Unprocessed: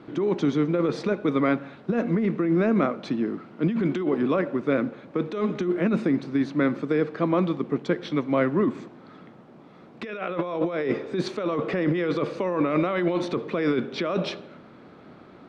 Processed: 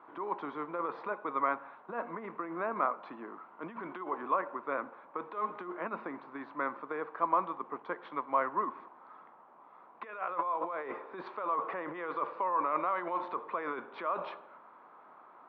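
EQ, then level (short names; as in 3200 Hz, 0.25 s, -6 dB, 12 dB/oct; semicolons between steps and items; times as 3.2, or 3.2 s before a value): band-pass 1000 Hz, Q 4.3; air absorption 370 m; tilt +2.5 dB/oct; +7.0 dB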